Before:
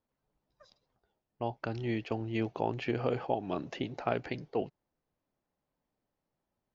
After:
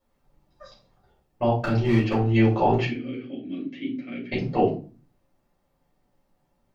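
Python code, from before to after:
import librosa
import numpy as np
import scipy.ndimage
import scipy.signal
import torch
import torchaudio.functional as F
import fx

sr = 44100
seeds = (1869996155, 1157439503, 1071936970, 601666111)

p1 = fx.rider(x, sr, range_db=10, speed_s=0.5)
p2 = x + (p1 * librosa.db_to_amplitude(-1.0))
p3 = fx.clip_hard(p2, sr, threshold_db=-22.0, at=(1.58, 2.16))
p4 = fx.vowel_filter(p3, sr, vowel='i', at=(2.85, 4.32))
p5 = fx.room_shoebox(p4, sr, seeds[0], volume_m3=200.0, walls='furnished', distance_m=5.4)
y = p5 * librosa.db_to_amplitude(-4.0)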